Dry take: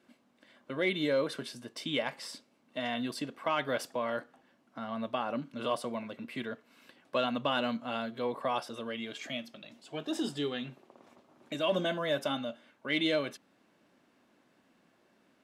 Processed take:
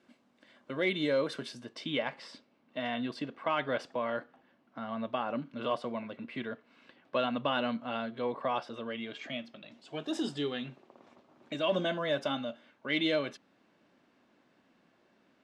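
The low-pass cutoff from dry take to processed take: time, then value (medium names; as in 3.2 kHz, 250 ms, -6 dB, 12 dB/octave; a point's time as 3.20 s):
1.49 s 7.9 kHz
1.94 s 3.7 kHz
9.61 s 3.7 kHz
10.09 s 9.4 kHz
10.44 s 5.7 kHz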